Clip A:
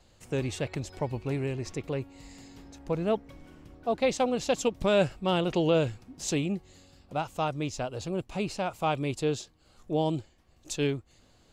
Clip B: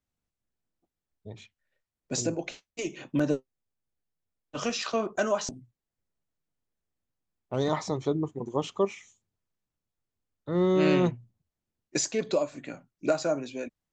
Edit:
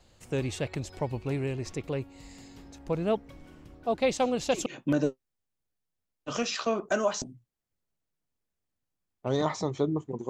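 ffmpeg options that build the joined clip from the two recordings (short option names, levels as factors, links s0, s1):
-filter_complex "[1:a]asplit=2[s0][s1];[0:a]apad=whole_dur=10.29,atrim=end=10.29,atrim=end=4.662[s2];[s1]atrim=start=2.928:end=8.56[s3];[s0]atrim=start=2.49:end=2.93,asetpts=PTS-STARTPTS,volume=0.422,afade=t=in:d=0.004:c=hsin,afade=t=out:st=0.436:d=0.004:c=hsin,adelay=4220[s4];[s2][s3]acrossfade=d=0.004:c1=hsin:c2=hsin[s5];[s5][s4]amix=inputs=2:normalize=0"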